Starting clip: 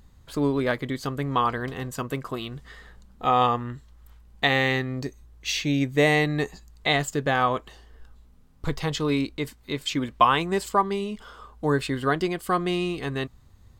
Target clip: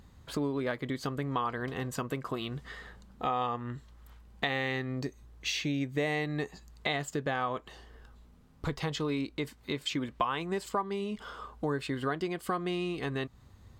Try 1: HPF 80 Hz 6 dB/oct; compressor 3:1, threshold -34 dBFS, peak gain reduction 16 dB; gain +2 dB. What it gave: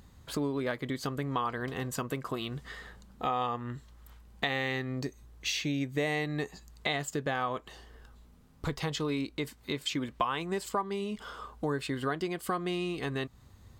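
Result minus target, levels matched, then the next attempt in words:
8000 Hz band +3.0 dB
HPF 80 Hz 6 dB/oct; high shelf 6000 Hz -6 dB; compressor 3:1, threshold -34 dBFS, peak gain reduction 15.5 dB; gain +2 dB

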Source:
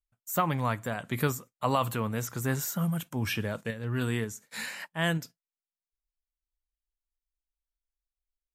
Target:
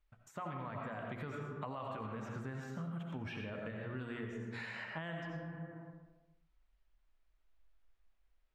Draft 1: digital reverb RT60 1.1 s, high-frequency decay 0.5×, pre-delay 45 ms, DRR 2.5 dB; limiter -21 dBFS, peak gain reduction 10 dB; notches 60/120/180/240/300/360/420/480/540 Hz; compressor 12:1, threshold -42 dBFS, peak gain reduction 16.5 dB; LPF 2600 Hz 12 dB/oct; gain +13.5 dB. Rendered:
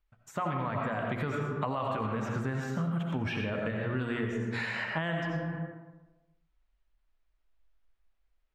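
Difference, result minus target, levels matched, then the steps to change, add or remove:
compressor: peak gain reduction -10.5 dB
change: compressor 12:1, threshold -53.5 dBFS, peak gain reduction 27 dB

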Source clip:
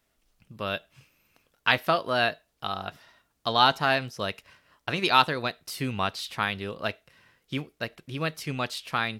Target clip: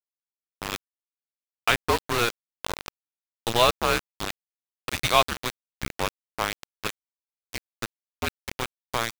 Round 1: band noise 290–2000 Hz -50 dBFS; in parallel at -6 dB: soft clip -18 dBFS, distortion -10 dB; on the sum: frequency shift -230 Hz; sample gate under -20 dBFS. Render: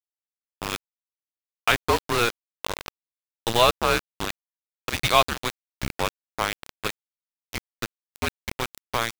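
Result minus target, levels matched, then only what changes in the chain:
soft clip: distortion -6 dB
change: soft clip -28 dBFS, distortion -4 dB

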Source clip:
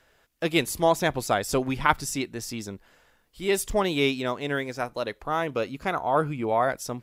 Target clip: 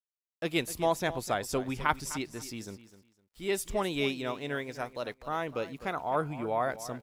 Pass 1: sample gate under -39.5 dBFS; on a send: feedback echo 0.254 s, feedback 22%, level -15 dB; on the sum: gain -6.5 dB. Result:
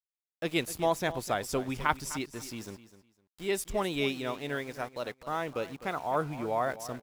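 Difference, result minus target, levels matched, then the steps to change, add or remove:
sample gate: distortion +15 dB
change: sample gate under -51.5 dBFS

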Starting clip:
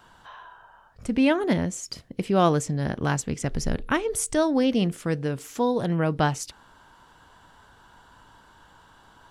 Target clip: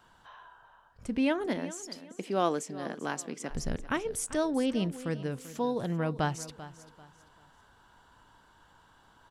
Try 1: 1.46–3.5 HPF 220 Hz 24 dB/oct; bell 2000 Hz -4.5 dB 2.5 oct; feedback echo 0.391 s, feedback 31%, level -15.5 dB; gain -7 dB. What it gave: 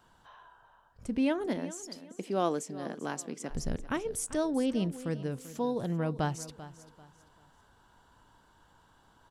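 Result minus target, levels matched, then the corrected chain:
2000 Hz band -3.5 dB
1.46–3.5 HPF 220 Hz 24 dB/oct; feedback echo 0.391 s, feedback 31%, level -15.5 dB; gain -7 dB

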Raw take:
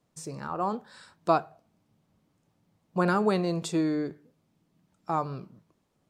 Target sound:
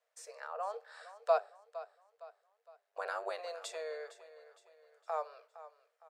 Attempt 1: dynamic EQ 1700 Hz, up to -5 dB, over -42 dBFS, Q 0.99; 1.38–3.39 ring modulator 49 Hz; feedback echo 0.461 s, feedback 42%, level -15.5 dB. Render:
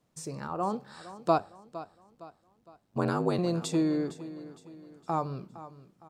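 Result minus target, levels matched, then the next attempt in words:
500 Hz band -3.5 dB
dynamic EQ 1700 Hz, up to -5 dB, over -42 dBFS, Q 0.99; rippled Chebyshev high-pass 450 Hz, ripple 9 dB; 1.38–3.39 ring modulator 49 Hz; feedback echo 0.461 s, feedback 42%, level -15.5 dB

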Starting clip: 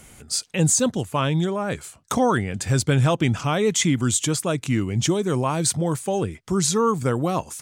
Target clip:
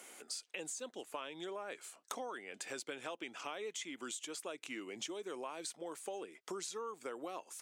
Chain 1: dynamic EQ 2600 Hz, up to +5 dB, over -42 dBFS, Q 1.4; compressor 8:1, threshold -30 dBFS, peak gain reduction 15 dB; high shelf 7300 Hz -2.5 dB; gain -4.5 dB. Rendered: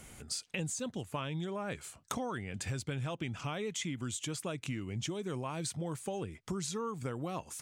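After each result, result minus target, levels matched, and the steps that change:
compressor: peak gain reduction -5.5 dB; 250 Hz band +4.5 dB
change: compressor 8:1, threshold -36.5 dBFS, peak gain reduction 20.5 dB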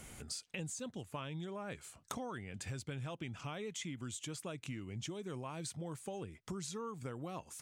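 250 Hz band +4.5 dB
add after dynamic EQ: HPF 330 Hz 24 dB/oct

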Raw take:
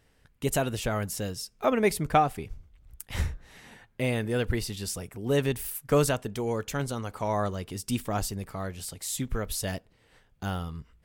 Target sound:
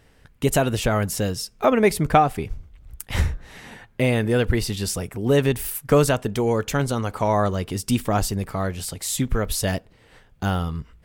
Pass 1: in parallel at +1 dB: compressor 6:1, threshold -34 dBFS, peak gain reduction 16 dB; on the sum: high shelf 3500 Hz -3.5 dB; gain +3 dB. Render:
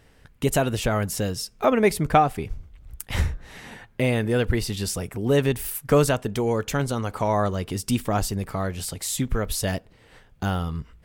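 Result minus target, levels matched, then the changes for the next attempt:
compressor: peak gain reduction +6 dB
change: compressor 6:1, threshold -26.5 dBFS, peak gain reduction 10 dB

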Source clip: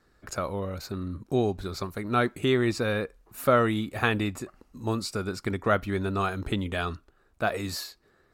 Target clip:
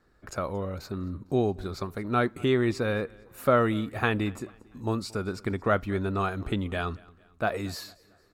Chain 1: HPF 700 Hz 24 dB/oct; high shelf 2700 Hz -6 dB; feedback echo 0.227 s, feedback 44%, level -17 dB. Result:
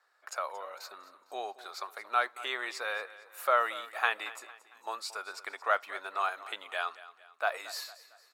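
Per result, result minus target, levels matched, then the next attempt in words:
echo-to-direct +7.5 dB; 500 Hz band -5.0 dB
HPF 700 Hz 24 dB/oct; high shelf 2700 Hz -6 dB; feedback echo 0.227 s, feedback 44%, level -24.5 dB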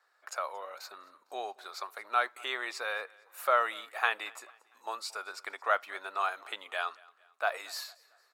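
500 Hz band -5.0 dB
high shelf 2700 Hz -6 dB; feedback echo 0.227 s, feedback 44%, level -24.5 dB

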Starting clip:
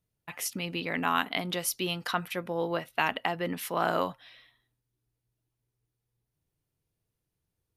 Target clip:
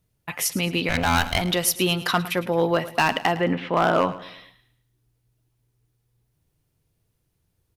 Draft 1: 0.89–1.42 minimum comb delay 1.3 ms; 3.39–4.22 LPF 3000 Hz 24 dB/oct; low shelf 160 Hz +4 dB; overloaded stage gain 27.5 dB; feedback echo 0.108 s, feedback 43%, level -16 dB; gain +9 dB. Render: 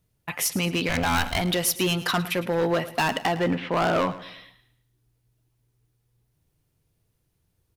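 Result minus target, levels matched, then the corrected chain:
overloaded stage: distortion +6 dB
0.89–1.42 minimum comb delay 1.3 ms; 3.39–4.22 LPF 3000 Hz 24 dB/oct; low shelf 160 Hz +4 dB; overloaded stage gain 21 dB; feedback echo 0.108 s, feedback 43%, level -16 dB; gain +9 dB

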